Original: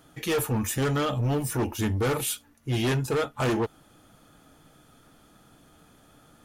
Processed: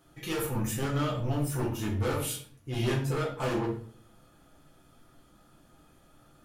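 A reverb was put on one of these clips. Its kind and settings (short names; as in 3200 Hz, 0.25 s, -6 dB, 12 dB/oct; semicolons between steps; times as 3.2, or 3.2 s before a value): shoebox room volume 56 m³, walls mixed, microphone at 0.89 m; gain -9 dB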